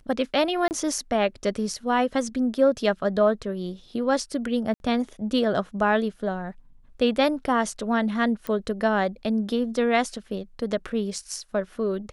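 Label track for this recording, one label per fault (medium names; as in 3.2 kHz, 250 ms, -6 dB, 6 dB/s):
0.680000	0.710000	dropout 29 ms
4.740000	4.800000	dropout 61 ms
8.470000	8.470000	pop -17 dBFS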